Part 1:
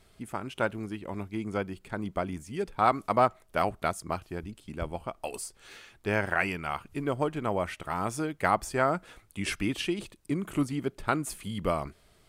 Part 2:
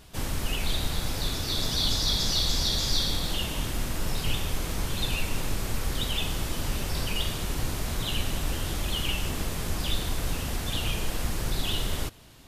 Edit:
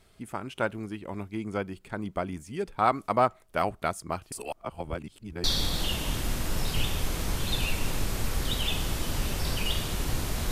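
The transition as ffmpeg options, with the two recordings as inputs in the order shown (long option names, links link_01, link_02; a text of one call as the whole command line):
ffmpeg -i cue0.wav -i cue1.wav -filter_complex "[0:a]apad=whole_dur=10.51,atrim=end=10.51,asplit=2[link_01][link_02];[link_01]atrim=end=4.322[link_03];[link_02]atrim=start=4.318:end=5.442,asetpts=PTS-STARTPTS,areverse[link_04];[1:a]atrim=start=2.938:end=8.01[link_05];[link_03][link_04]acrossfade=duration=0.004:curve1=hsin:curve2=hsin[link_06];[link_06][link_05]acrossfade=duration=0.004:curve1=hsin:curve2=hsin" out.wav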